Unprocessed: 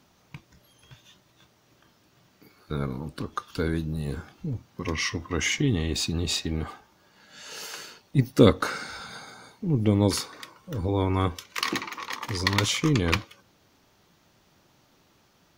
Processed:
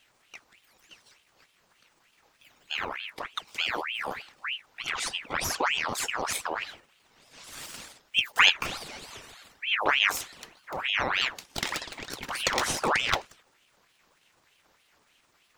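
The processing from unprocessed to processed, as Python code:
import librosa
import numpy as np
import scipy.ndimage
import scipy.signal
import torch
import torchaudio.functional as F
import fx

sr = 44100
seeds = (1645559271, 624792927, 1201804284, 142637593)

y = fx.pitch_trill(x, sr, semitones=5.5, every_ms=111)
y = fx.ring_lfo(y, sr, carrier_hz=1800.0, swing_pct=65, hz=3.3)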